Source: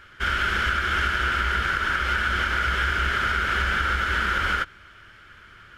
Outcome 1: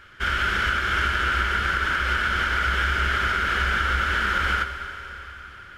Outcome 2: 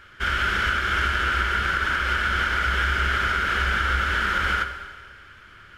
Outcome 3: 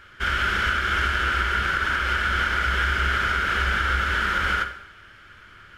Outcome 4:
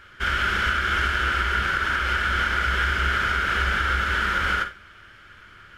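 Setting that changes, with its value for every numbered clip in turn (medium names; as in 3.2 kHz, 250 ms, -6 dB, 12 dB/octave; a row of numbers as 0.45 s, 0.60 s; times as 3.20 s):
Schroeder reverb, RT60: 4 s, 1.6 s, 0.71 s, 0.3 s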